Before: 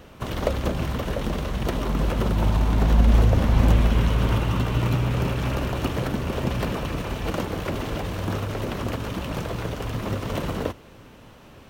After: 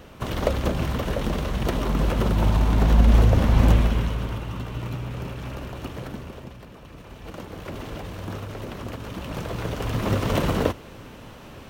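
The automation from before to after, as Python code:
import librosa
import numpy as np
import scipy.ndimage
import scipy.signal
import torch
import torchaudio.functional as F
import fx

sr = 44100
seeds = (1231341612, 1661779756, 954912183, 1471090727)

y = fx.gain(x, sr, db=fx.line((3.72, 1.0), (4.34, -8.5), (6.17, -8.5), (6.64, -18.5), (7.8, -6.0), (8.97, -6.0), (10.18, 5.0)))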